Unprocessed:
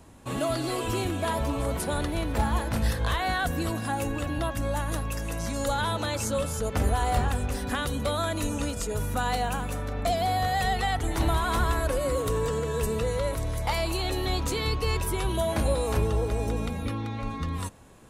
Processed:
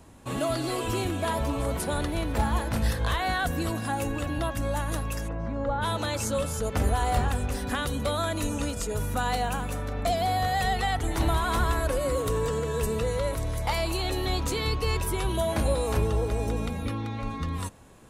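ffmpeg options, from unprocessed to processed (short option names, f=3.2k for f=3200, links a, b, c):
-filter_complex "[0:a]asplit=3[a][b][c];[a]afade=t=out:st=5.27:d=0.02[d];[b]lowpass=1.3k,afade=t=in:st=5.27:d=0.02,afade=t=out:st=5.81:d=0.02[e];[c]afade=t=in:st=5.81:d=0.02[f];[d][e][f]amix=inputs=3:normalize=0"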